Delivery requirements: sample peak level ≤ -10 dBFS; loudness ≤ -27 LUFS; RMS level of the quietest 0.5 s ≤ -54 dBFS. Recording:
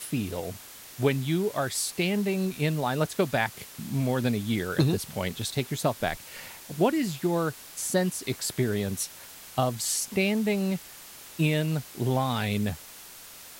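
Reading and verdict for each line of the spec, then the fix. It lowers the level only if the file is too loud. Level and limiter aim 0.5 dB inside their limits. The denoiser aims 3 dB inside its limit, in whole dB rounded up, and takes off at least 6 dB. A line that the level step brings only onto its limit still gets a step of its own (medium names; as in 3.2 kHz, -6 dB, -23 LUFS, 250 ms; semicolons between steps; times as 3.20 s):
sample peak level -9.0 dBFS: fail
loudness -28.0 LUFS: pass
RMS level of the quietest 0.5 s -46 dBFS: fail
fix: noise reduction 11 dB, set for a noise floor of -46 dBFS; peak limiter -10.5 dBFS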